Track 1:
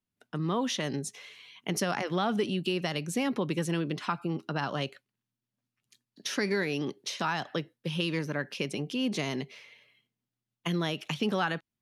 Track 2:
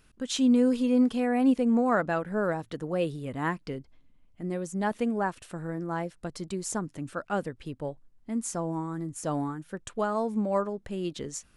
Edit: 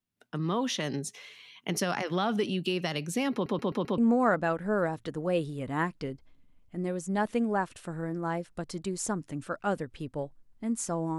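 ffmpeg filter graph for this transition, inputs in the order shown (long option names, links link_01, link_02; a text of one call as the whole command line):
ffmpeg -i cue0.wav -i cue1.wav -filter_complex "[0:a]apad=whole_dur=11.18,atrim=end=11.18,asplit=5[link_01][link_02][link_03][link_04][link_05];[link_01]atrim=end=3.462[link_06];[link_02]atrim=start=3.328:end=3.462[link_07];[link_03]atrim=start=3.328:end=3.462[link_08];[link_04]atrim=start=3.328:end=3.462[link_09];[link_05]atrim=start=3.328:end=3.462[link_10];[1:a]atrim=start=1.638:end=8.84[link_11];[link_06][link_07]acrossfade=duration=0.004:curve1=hsin:curve2=hsin[link_12];[link_12][link_08]acrossfade=duration=0.004:curve1=hsin:curve2=hsin[link_13];[link_13][link_09]acrossfade=duration=0.004:curve1=hsin:curve2=hsin[link_14];[link_14][link_10]acrossfade=duration=0.004:curve1=hsin:curve2=hsin[link_15];[link_15][link_11]acrossfade=duration=0.004:curve1=hsin:curve2=hsin" out.wav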